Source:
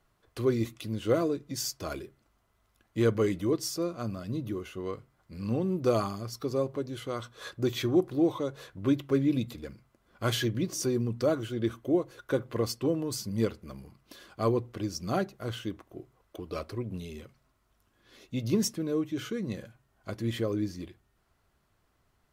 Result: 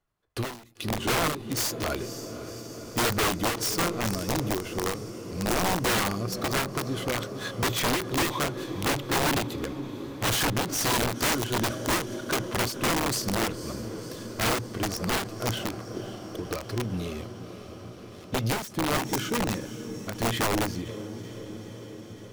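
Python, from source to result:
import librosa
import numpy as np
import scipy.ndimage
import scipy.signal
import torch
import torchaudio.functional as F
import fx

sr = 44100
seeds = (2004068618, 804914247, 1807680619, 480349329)

y = fx.leveller(x, sr, passes=3)
y = fx.comb_fb(y, sr, f0_hz=850.0, decay_s=0.19, harmonics='all', damping=0.0, mix_pct=40)
y = fx.echo_diffused(y, sr, ms=524, feedback_pct=74, wet_db=-12.5)
y = (np.mod(10.0 ** (21.0 / 20.0) * y + 1.0, 2.0) - 1.0) / 10.0 ** (21.0 / 20.0)
y = fx.end_taper(y, sr, db_per_s=110.0)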